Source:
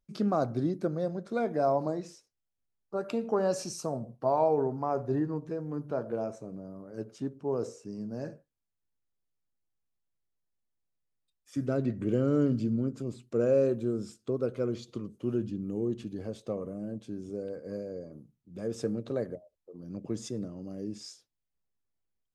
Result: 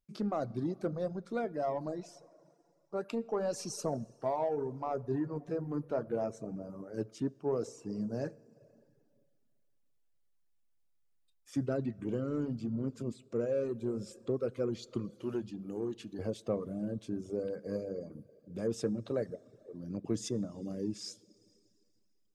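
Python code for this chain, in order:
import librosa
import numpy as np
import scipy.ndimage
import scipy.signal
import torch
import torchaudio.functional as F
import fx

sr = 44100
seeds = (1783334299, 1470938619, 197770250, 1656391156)

p1 = 10.0 ** (-27.0 / 20.0) * np.tanh(x / 10.0 ** (-27.0 / 20.0))
p2 = x + (p1 * librosa.db_to_amplitude(-6.0))
p3 = fx.low_shelf(p2, sr, hz=380.0, db=-10.5, at=(15.19, 16.19))
p4 = fx.rev_schroeder(p3, sr, rt60_s=2.1, comb_ms=27, drr_db=12.5)
p5 = fx.rider(p4, sr, range_db=4, speed_s=0.5)
p6 = fx.dereverb_blind(p5, sr, rt60_s=0.71)
y = p6 * librosa.db_to_amplitude(-5.0)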